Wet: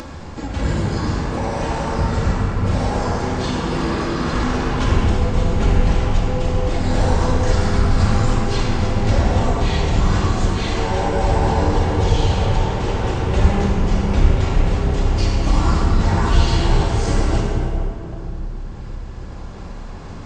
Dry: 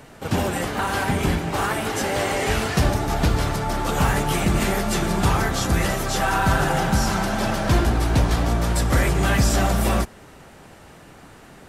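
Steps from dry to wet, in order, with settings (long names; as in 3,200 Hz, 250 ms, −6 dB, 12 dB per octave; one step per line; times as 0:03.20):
rectangular room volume 2,800 cubic metres, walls mixed, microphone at 4.7 metres
upward compression, threshold −17 dBFS
wrong playback speed 78 rpm record played at 45 rpm
level −5.5 dB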